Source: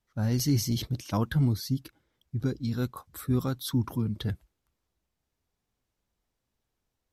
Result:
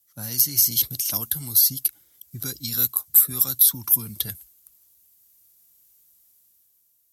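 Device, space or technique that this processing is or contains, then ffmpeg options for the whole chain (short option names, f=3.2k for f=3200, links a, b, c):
FM broadcast chain: -filter_complex "[0:a]highpass=53,dynaudnorm=f=120:g=13:m=7dB,acrossover=split=120|750|3400[a][b][c][d];[a]acompressor=threshold=-37dB:ratio=4[e];[b]acompressor=threshold=-33dB:ratio=4[f];[c]acompressor=threshold=-38dB:ratio=4[g];[d]acompressor=threshold=-37dB:ratio=4[h];[e][f][g][h]amix=inputs=4:normalize=0,aemphasis=mode=production:type=75fm,alimiter=limit=-14dB:level=0:latency=1:release=312,asoftclip=type=hard:threshold=-15dB,lowpass=f=15k:w=0.5412,lowpass=f=15k:w=1.3066,aemphasis=mode=production:type=75fm,volume=-4dB"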